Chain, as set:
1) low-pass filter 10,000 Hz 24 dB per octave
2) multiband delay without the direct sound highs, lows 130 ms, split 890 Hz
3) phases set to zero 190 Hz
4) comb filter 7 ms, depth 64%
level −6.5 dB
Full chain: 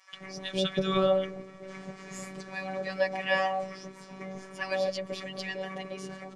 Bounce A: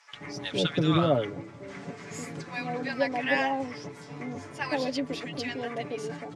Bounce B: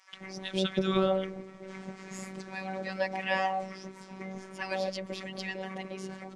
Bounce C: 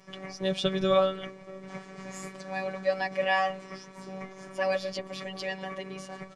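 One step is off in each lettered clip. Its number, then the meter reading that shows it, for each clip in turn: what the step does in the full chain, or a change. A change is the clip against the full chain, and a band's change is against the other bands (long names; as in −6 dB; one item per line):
3, 125 Hz band +5.5 dB
4, 250 Hz band +3.0 dB
2, 1 kHz band +2.0 dB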